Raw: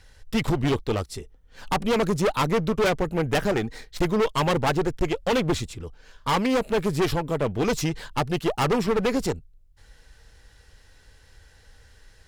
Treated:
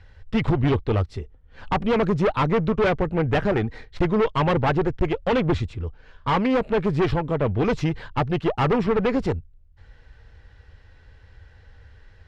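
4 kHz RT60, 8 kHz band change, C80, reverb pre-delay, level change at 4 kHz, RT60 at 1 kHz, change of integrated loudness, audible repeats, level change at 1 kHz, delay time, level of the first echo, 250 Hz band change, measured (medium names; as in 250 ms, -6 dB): no reverb, under -15 dB, no reverb, no reverb, -4.0 dB, no reverb, +2.0 dB, no echo, +1.5 dB, no echo, no echo, +2.5 dB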